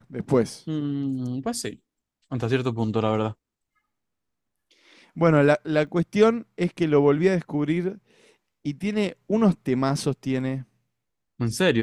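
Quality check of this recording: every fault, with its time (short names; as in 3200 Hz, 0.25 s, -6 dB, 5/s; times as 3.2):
5.87 gap 2 ms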